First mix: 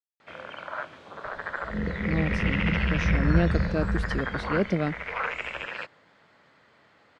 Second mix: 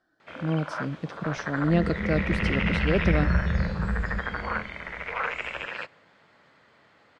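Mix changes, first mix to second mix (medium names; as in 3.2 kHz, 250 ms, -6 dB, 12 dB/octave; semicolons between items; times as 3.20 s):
speech: entry -1.65 s; reverb: on, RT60 1.3 s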